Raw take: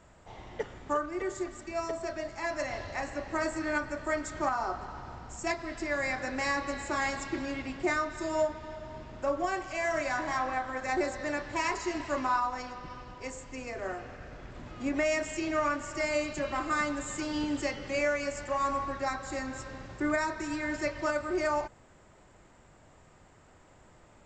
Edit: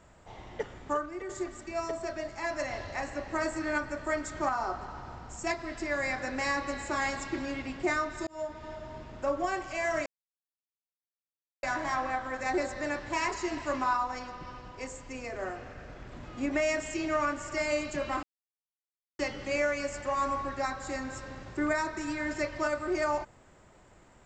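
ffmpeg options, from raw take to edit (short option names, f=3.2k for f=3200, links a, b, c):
-filter_complex "[0:a]asplit=6[a][b][c][d][e][f];[a]atrim=end=1.29,asetpts=PTS-STARTPTS,afade=t=out:st=0.89:d=0.4:silence=0.446684[g];[b]atrim=start=1.29:end=8.27,asetpts=PTS-STARTPTS,afade=t=in:d=0.004:c=hsin:silence=0.446684,afade=t=out:st=6.976:d=0.004:c=hsin[h];[c]atrim=start=8.27:end=10.06,asetpts=PTS-STARTPTS,afade=t=in:d=0.4,afade=t=out:st=1.786:d=0.004:c=hsin,apad=pad_dur=1.57[i];[d]atrim=start=10.06:end=16.66,asetpts=PTS-STARTPTS,afade=t=in:d=0.004:c=hsin,afade=t=out:st=6.596:d=0.004:c=hsin[j];[e]atrim=start=16.66:end=17.62,asetpts=PTS-STARTPTS,volume=0[k];[f]atrim=start=17.62,asetpts=PTS-STARTPTS,afade=t=in:d=0.004:c=hsin[l];[g][h][i][j][k][l]concat=n=6:v=0:a=1"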